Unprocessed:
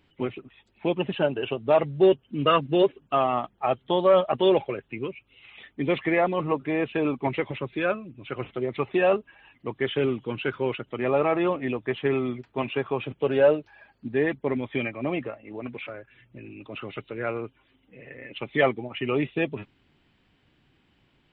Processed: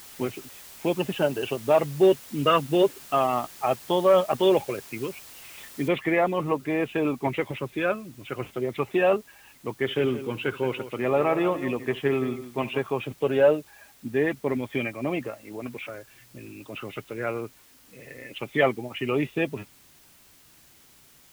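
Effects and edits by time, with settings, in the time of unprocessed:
5.88 s: noise floor step -46 dB -56 dB
9.75–12.79 s: multi-tap echo 69/172 ms -18.5/-13 dB

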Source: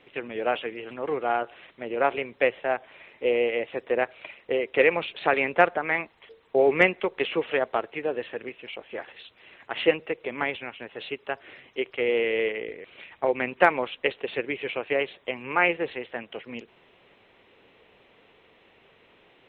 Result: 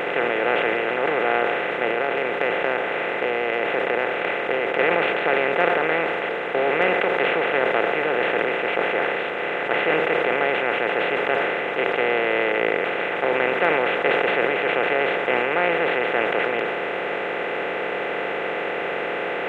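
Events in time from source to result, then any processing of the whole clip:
1.90–4.79 s: compression, threshold -34 dBFS
whole clip: spectral levelling over time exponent 0.2; band-stop 2.2 kHz, Q 24; decay stretcher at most 21 dB/s; trim -8 dB

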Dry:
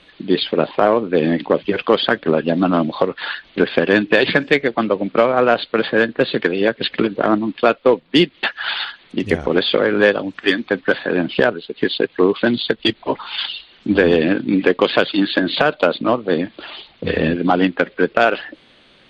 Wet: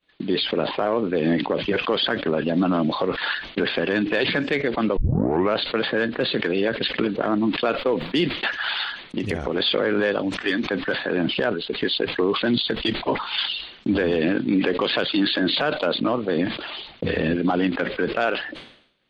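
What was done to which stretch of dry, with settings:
4.97 s: tape start 0.60 s
8.55–9.60 s: compression 3:1, threshold -22 dBFS
whole clip: expander -37 dBFS; peak limiter -12.5 dBFS; decay stretcher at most 88 dB/s

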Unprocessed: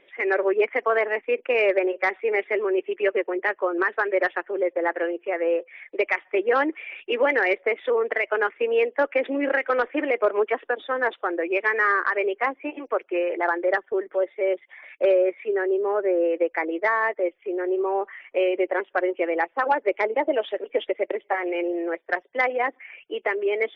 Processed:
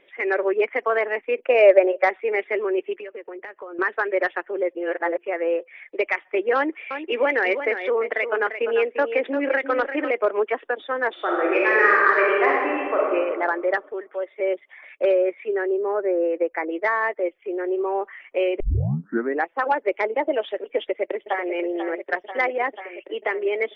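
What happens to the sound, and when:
1.45–2.11 s: peaking EQ 630 Hz +11.5 dB 0.53 oct
2.95–3.79 s: compression 8:1, threshold -33 dBFS
4.75–5.18 s: reverse
6.56–10.11 s: delay 346 ms -9 dB
11.11–13.09 s: reverb throw, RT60 1.8 s, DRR -4 dB
13.89–14.40 s: bass shelf 480 Hz -10.5 dB
15.72–16.70 s: peaking EQ 3.5 kHz -10 dB 0.81 oct
18.60 s: tape start 0.86 s
20.77–21.52 s: echo throw 490 ms, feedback 80%, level -9.5 dB

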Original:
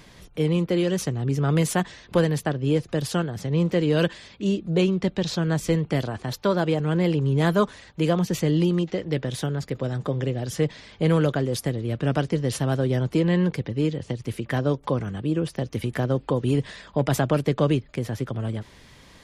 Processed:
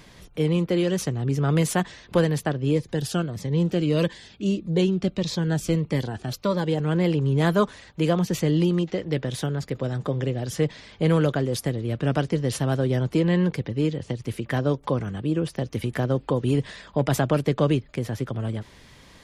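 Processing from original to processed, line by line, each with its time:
2.71–6.78 s: Shepard-style phaser falling 1.6 Hz

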